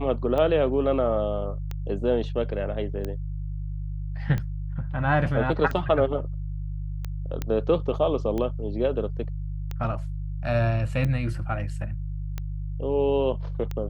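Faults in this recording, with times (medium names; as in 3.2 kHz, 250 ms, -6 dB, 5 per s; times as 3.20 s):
hum 50 Hz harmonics 3 -31 dBFS
tick 45 rpm -18 dBFS
7.42 s: pop -15 dBFS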